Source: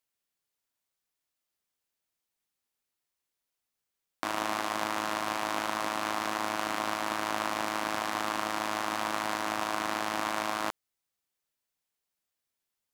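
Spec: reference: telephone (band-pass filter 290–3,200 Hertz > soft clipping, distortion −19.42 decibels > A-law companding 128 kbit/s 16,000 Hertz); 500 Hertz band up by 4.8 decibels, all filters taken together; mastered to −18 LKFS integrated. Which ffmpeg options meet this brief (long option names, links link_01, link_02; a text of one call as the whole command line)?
ffmpeg -i in.wav -af "highpass=290,lowpass=3200,equalizer=frequency=500:width_type=o:gain=7,asoftclip=threshold=-17.5dB,volume=14dB" -ar 16000 -c:a pcm_alaw out.wav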